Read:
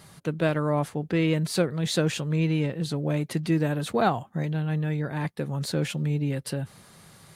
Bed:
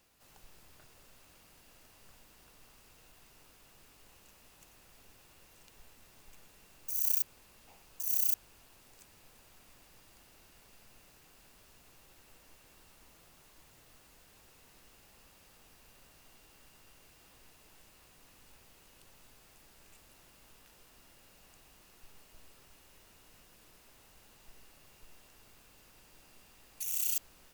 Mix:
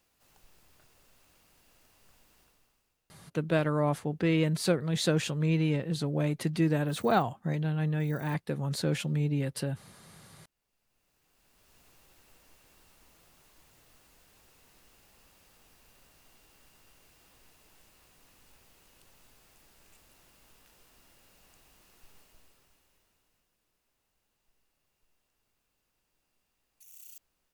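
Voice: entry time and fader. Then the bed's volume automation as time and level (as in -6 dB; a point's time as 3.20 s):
3.10 s, -2.5 dB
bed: 2.40 s -3.5 dB
3.15 s -24.5 dB
10.54 s -24.5 dB
11.79 s -1 dB
22.18 s -1 dB
23.58 s -18.5 dB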